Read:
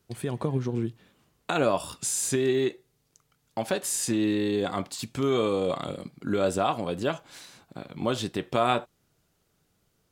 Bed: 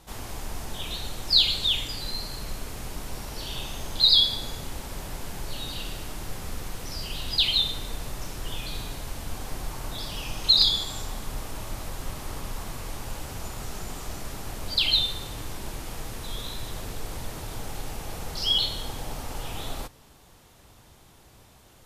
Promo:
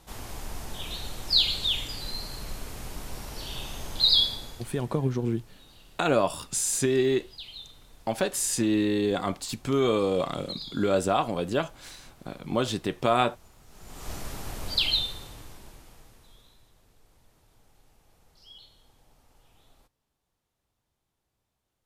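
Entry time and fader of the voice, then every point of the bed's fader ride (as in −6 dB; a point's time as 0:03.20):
4.50 s, +1.0 dB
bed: 0:04.22 −2.5 dB
0:05.10 −20 dB
0:13.65 −20 dB
0:14.10 −1 dB
0:14.77 −1 dB
0:16.75 −27 dB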